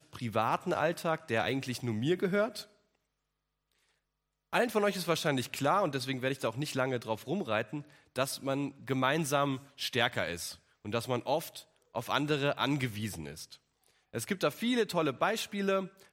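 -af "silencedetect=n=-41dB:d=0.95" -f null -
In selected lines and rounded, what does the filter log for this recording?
silence_start: 2.62
silence_end: 4.53 | silence_duration: 1.91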